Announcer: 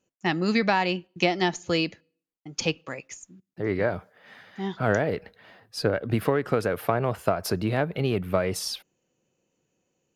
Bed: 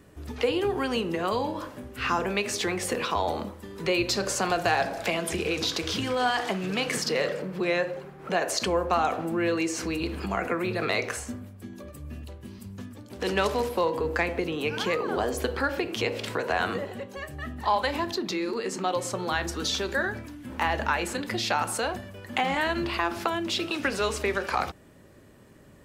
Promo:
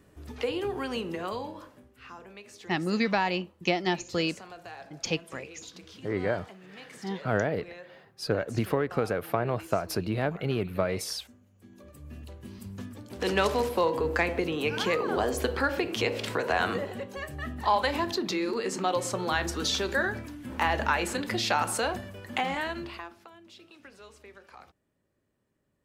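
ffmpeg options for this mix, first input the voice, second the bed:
-filter_complex "[0:a]adelay=2450,volume=-3.5dB[a];[1:a]volume=15dB,afade=t=out:st=1.11:d=0.87:silence=0.177828,afade=t=in:st=11.47:d=1.23:silence=0.1,afade=t=out:st=22.08:d=1.09:silence=0.0668344[b];[a][b]amix=inputs=2:normalize=0"

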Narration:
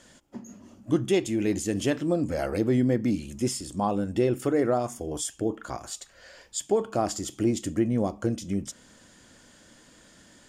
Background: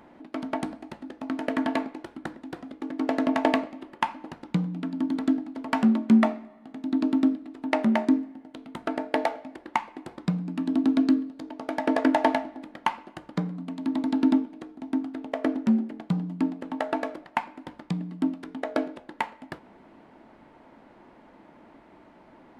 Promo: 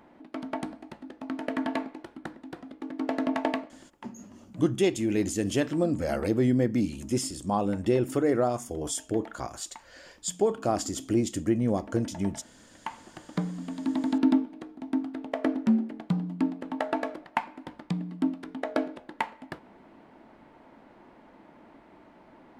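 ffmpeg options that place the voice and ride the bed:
-filter_complex "[0:a]adelay=3700,volume=-0.5dB[a];[1:a]volume=17.5dB,afade=t=out:st=3.31:d=0.69:silence=0.11885,afade=t=in:st=12.68:d=0.75:silence=0.0891251[b];[a][b]amix=inputs=2:normalize=0"

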